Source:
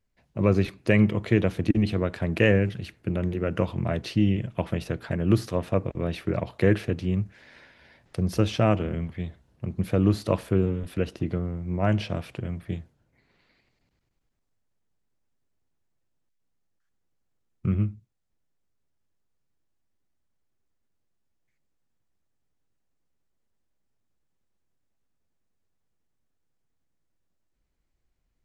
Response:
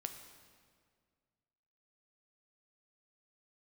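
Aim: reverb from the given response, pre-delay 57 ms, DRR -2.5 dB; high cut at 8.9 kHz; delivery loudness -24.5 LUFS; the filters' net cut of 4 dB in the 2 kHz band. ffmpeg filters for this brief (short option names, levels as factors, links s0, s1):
-filter_complex "[0:a]lowpass=8900,equalizer=f=2000:t=o:g=-5,asplit=2[s0][s1];[1:a]atrim=start_sample=2205,adelay=57[s2];[s1][s2]afir=irnorm=-1:irlink=0,volume=1.68[s3];[s0][s3]amix=inputs=2:normalize=0,volume=0.708"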